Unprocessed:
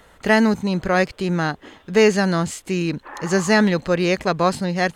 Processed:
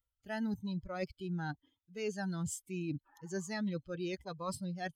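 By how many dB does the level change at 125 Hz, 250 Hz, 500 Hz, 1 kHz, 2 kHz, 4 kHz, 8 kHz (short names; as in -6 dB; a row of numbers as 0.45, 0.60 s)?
-16.5, -18.5, -22.0, -21.5, -23.0, -21.5, -14.5 dB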